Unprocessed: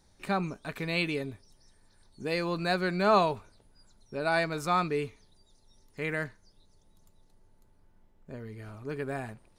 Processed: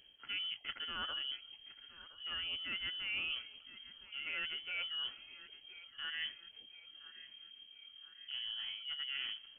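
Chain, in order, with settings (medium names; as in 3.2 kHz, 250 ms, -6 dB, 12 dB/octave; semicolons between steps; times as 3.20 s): reverse; compression 6:1, threshold -40 dBFS, peak gain reduction 19 dB; reverse; thinning echo 1016 ms, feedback 55%, high-pass 420 Hz, level -16 dB; formant shift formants -5 st; frequency inversion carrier 3.2 kHz; trim +1.5 dB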